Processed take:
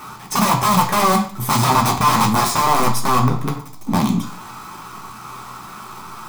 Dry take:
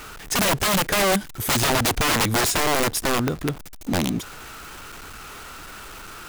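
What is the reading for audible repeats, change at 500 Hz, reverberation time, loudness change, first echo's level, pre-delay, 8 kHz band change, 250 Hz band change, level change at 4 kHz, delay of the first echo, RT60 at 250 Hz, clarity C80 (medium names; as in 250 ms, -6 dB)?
no echo, 0.0 dB, 0.50 s, +4.0 dB, no echo, 3 ms, 0.0 dB, +5.5 dB, -0.5 dB, no echo, 0.60 s, 13.0 dB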